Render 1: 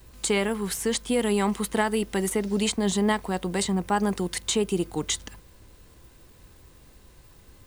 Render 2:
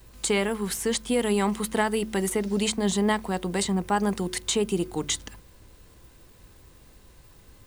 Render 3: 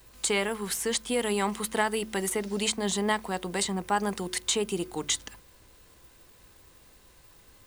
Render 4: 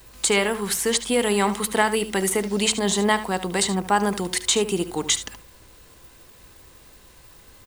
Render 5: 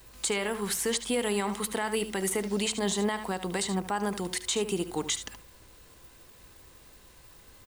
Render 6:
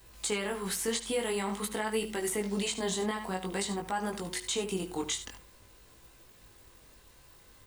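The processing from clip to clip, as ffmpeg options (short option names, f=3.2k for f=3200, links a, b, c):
-af "bandreject=f=72.95:t=h:w=4,bandreject=f=145.9:t=h:w=4,bandreject=f=218.85:t=h:w=4,bandreject=f=291.8:t=h:w=4,bandreject=f=364.75:t=h:w=4"
-af "lowshelf=f=360:g=-8.5"
-af "aecho=1:1:74:0.211,volume=6.5dB"
-af "alimiter=limit=-14.5dB:level=0:latency=1:release=149,volume=-4.5dB"
-af "flanger=delay=18:depth=4.6:speed=0.49"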